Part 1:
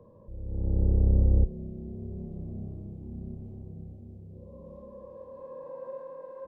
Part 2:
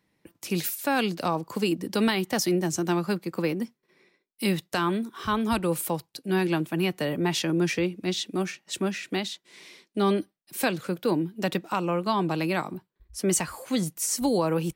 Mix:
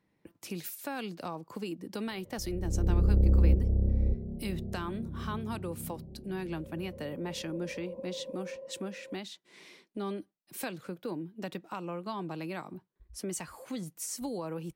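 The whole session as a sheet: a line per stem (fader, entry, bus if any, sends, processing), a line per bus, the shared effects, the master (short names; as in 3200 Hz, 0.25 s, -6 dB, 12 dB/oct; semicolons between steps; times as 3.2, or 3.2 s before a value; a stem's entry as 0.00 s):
-1.5 dB, 2.10 s, no send, echo send -4 dB, steep low-pass 860 Hz 48 dB/oct
-1.5 dB, 0.00 s, no send, no echo send, compressor 2:1, threshold -41 dBFS, peak gain reduction 12 dB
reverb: off
echo: echo 0.589 s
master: mismatched tape noise reduction decoder only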